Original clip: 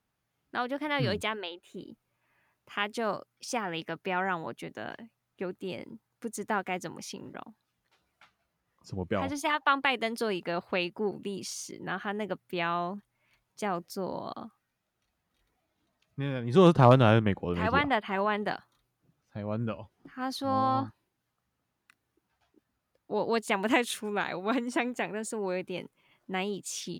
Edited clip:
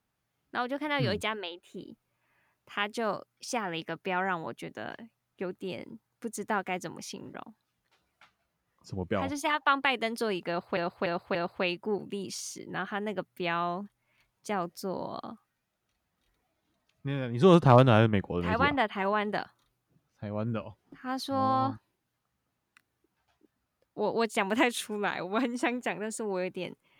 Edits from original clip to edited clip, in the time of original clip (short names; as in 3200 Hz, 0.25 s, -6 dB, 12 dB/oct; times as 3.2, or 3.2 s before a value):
10.48–10.77 loop, 4 plays